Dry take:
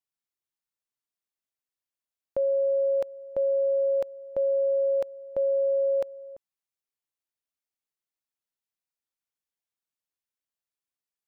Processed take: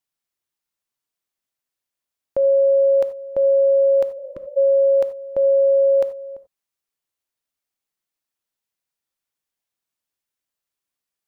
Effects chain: gated-style reverb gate 110 ms flat, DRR 11.5 dB; spectral replace 4.20–4.54 s, 400–990 Hz before; trim +6 dB

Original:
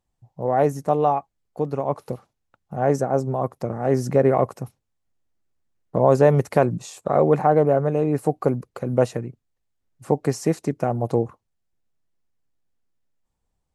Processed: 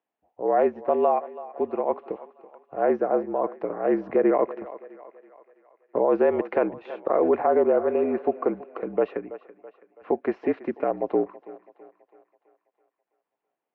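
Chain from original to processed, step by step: thinning echo 329 ms, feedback 55%, high-pass 390 Hz, level -17 dB; mistuned SSB -50 Hz 330–2900 Hz; peak limiter -11.5 dBFS, peak gain reduction 7 dB

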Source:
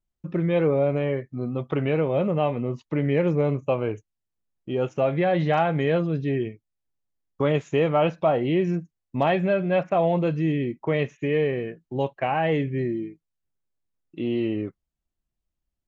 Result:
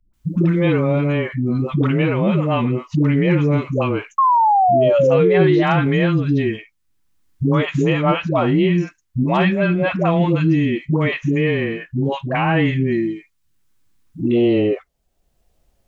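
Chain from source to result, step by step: high-order bell 570 Hz -8 dB 1.2 oct, from 14.25 s +8.5 dB; phase dispersion highs, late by 136 ms, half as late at 410 Hz; 4.18–5.63 s: painted sound fall 330–1100 Hz -22 dBFS; three bands compressed up and down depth 40%; trim +8.5 dB

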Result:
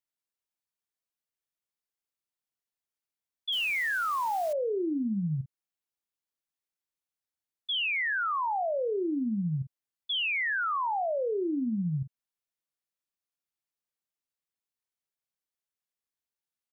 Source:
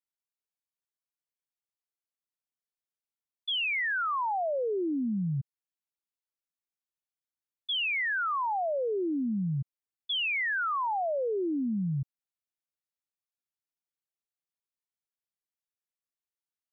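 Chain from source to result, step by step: doubling 45 ms -13 dB; 3.52–4.53 s: modulation noise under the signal 20 dB

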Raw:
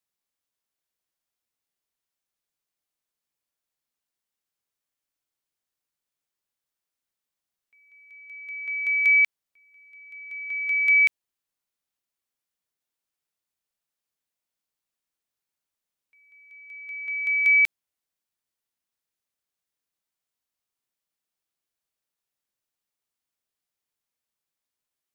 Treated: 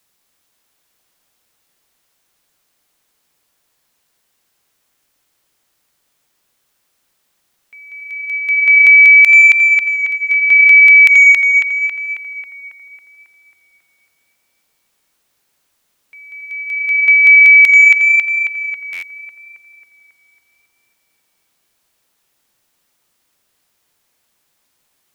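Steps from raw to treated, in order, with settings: tape echo 273 ms, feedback 67%, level -5 dB, low-pass 3 kHz; loudness maximiser +22.5 dB; buffer glitch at 18.92 s, samples 512, times 8; trim -1 dB

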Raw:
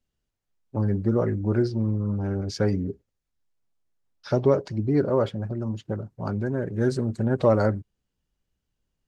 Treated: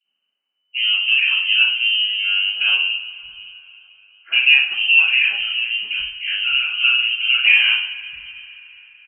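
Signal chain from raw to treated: frequency inversion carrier 3 kHz; three bands offset in time highs, mids, lows 40/720 ms, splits 180/1700 Hz; two-slope reverb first 0.5 s, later 3.7 s, from -21 dB, DRR -10 dB; trim -2.5 dB

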